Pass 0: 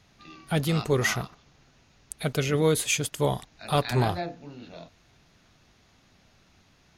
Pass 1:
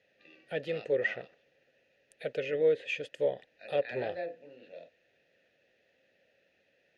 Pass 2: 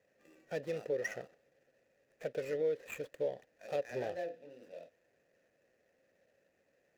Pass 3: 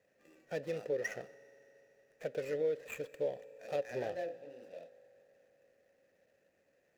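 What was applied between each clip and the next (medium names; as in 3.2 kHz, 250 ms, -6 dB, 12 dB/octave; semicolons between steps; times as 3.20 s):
vowel filter e; low-pass that closes with the level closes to 2.9 kHz, closed at -31.5 dBFS; trim +5 dB
median filter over 15 samples; compression 2:1, threshold -34 dBFS, peak gain reduction 7 dB; trim -1 dB
reverberation RT60 3.7 s, pre-delay 3 ms, DRR 17.5 dB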